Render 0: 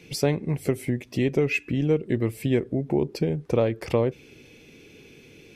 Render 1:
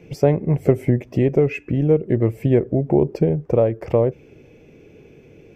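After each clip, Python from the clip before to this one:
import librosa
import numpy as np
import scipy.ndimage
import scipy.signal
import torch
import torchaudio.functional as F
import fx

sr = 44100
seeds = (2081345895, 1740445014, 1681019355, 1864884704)

y = fx.graphic_eq_15(x, sr, hz=(250, 630, 4000, 10000), db=(-4, 5, -10, -11))
y = fx.rider(y, sr, range_db=10, speed_s=0.5)
y = fx.tilt_shelf(y, sr, db=5.5, hz=1100.0)
y = y * 10.0 ** (2.0 / 20.0)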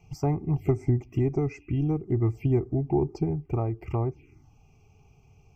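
y = x + 0.56 * np.pad(x, (int(2.5 * sr / 1000.0), 0))[:len(x)]
y = fx.env_phaser(y, sr, low_hz=290.0, high_hz=3000.0, full_db=-14.5)
y = fx.fixed_phaser(y, sr, hz=2500.0, stages=8)
y = y * 10.0 ** (-3.0 / 20.0)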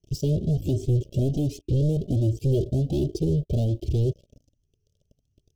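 y = fx.leveller(x, sr, passes=5)
y = scipy.signal.sosfilt(scipy.signal.cheby1(4, 1.0, [600.0, 3100.0], 'bandstop', fs=sr, output='sos'), y)
y = fx.comb_cascade(y, sr, direction='rising', hz=1.3)
y = y * 10.0 ** (-2.5 / 20.0)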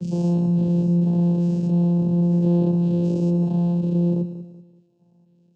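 y = fx.spec_dilate(x, sr, span_ms=240)
y = fx.vocoder(y, sr, bands=8, carrier='saw', carrier_hz=173.0)
y = fx.echo_feedback(y, sr, ms=190, feedback_pct=35, wet_db=-12.5)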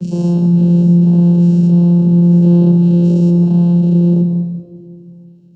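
y = fx.room_shoebox(x, sr, seeds[0], volume_m3=2900.0, walls='mixed', distance_m=1.2)
y = y * 10.0 ** (5.5 / 20.0)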